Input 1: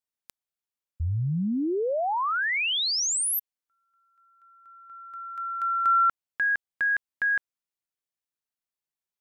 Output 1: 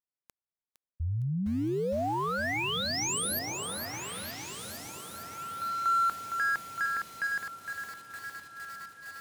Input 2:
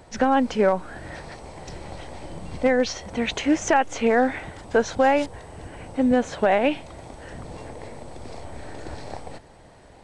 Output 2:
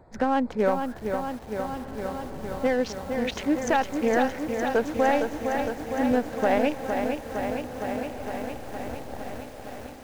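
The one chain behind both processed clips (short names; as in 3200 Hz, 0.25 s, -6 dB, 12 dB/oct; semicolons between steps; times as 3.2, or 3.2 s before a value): Wiener smoothing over 15 samples; diffused feedback echo 1.624 s, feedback 52%, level -14.5 dB; lo-fi delay 0.46 s, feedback 80%, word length 7-bit, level -6 dB; gain -4 dB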